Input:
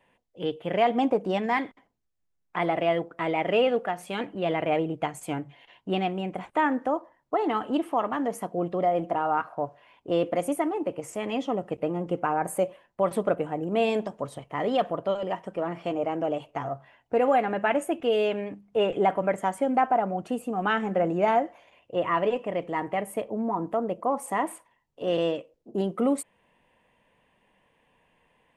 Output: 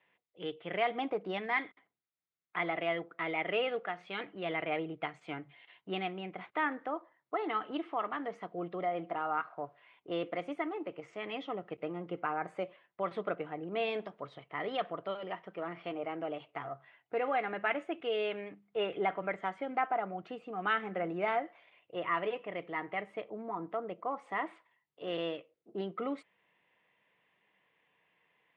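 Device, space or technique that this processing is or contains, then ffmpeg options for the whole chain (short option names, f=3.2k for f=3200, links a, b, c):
kitchen radio: -af "highpass=170,equalizer=f=240:t=q:w=4:g=-10,equalizer=f=550:t=q:w=4:g=-5,equalizer=f=900:t=q:w=4:g=-4,equalizer=f=1.3k:t=q:w=4:g=5,equalizer=f=2.1k:t=q:w=4:g=7,equalizer=f=3.6k:t=q:w=4:g=4,lowpass=f=4.3k:w=0.5412,lowpass=f=4.3k:w=1.3066,volume=-7.5dB"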